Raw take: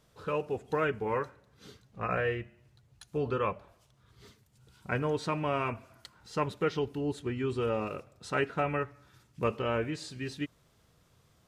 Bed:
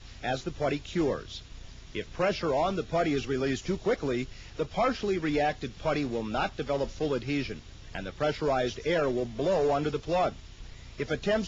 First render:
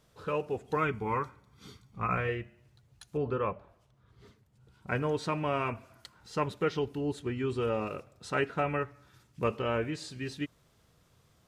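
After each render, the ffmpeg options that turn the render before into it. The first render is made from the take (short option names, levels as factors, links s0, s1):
-filter_complex "[0:a]asettb=1/sr,asplit=3[s0][s1][s2];[s0]atrim=end=0.764[s3];[s1]atrim=start=0.76:end=2.29,asetpts=PTS-STARTPTS,afade=t=in:d=0.004:c=qsin,afade=t=out:st=1.526:d=0.004:c=qsin,aecho=1:1:0.9:0.54,atrim=end_sample=67473[s4];[s2]atrim=start=2.286[s5];[s3][s4]acrossfade=d=0.004:c1=hsin:c2=qsin[s6];[s6][s5]acrossfade=d=0.004:c1=qsin:c2=hsin,asettb=1/sr,asplit=3[s7][s8][s9];[s7]atrim=end=3.174[s10];[s8]atrim=start=3.17:end=4.88,asetpts=PTS-STARTPTS,afade=t=in:d=0.004:c=qsin,afade=t=out:st=1.706:d=0.004:c=qsin,highshelf=f=2600:g=-11[s11];[s9]atrim=start=4.876[s12];[s10][s11]acrossfade=d=0.004:c1=hsin:c2=qsin[s13];[s13][s12]acrossfade=d=0.004:c1=qsin:c2=hsin"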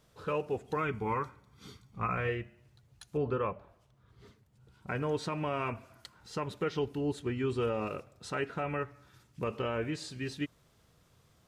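-af "alimiter=limit=0.0841:level=0:latency=1:release=123"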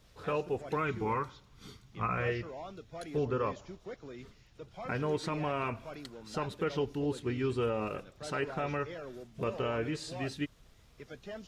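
-filter_complex "[1:a]volume=0.141[s0];[0:a][s0]amix=inputs=2:normalize=0"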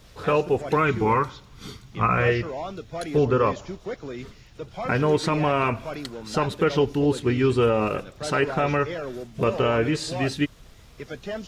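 -af "volume=3.76"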